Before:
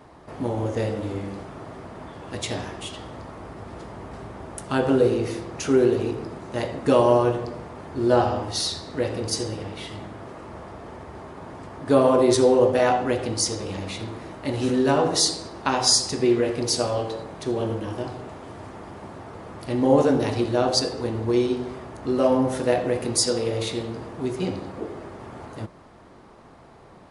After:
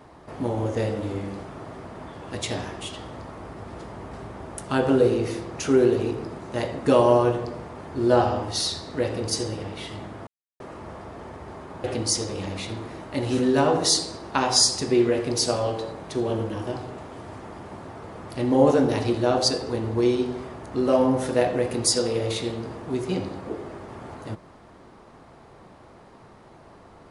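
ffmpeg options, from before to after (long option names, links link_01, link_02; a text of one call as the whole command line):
ffmpeg -i in.wav -filter_complex "[0:a]asplit=3[link_01][link_02][link_03];[link_01]atrim=end=10.27,asetpts=PTS-STARTPTS,afade=type=out:start_time=10.266:duration=0.004:curve=hsin,apad=pad_dur=0.33[link_04];[link_02]atrim=start=10.27:end=11.512,asetpts=PTS-STARTPTS,afade=type=in:duration=0.004:curve=hsin[link_05];[link_03]atrim=start=13.148[link_06];[link_04][link_05]concat=n=2:v=0:a=1[link_07];[link_07][link_06]acrossfade=duration=0.004:curve1=hsin:curve2=hsin" out.wav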